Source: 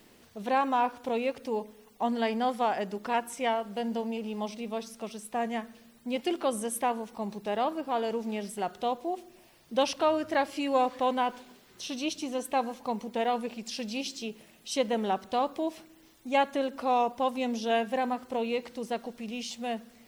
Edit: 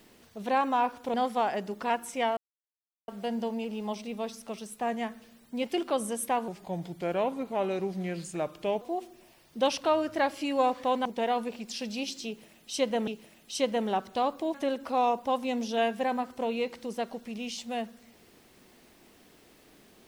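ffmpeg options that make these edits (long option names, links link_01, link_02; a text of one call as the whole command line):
ffmpeg -i in.wav -filter_complex "[0:a]asplit=8[link_01][link_02][link_03][link_04][link_05][link_06][link_07][link_08];[link_01]atrim=end=1.142[link_09];[link_02]atrim=start=2.378:end=3.61,asetpts=PTS-STARTPTS,afade=type=out:start_time=1.228:duration=0.004:curve=hsin,apad=pad_dur=0.71[link_10];[link_03]atrim=start=3.61:end=7.014,asetpts=PTS-STARTPTS,afade=type=in:duration=0.004:curve=hsin[link_11];[link_04]atrim=start=7.01:end=8.97,asetpts=PTS-STARTPTS,asetrate=37044,aresample=44100[link_12];[link_05]atrim=start=8.966:end=11.212[link_13];[link_06]atrim=start=13.028:end=15.052[link_14];[link_07]atrim=start=14.238:end=15.712[link_15];[link_08]atrim=start=16.468[link_16];[link_10][link_11]concat=n=2:v=0:a=1[link_17];[link_09][link_17]acrossfade=duration=0.004:curve1=hsin:curve2=hsin[link_18];[link_18][link_12]acrossfade=duration=0.004:curve1=hsin:curve2=hsin[link_19];[link_19][link_13]acrossfade=duration=0.004:curve1=hsin:curve2=hsin[link_20];[link_20][link_14]acrossfade=duration=0.004:curve1=hsin:curve2=hsin[link_21];[link_21][link_15]acrossfade=duration=0.004:curve1=hsin:curve2=hsin[link_22];[link_22][link_16]acrossfade=duration=0.004:curve1=hsin:curve2=hsin" out.wav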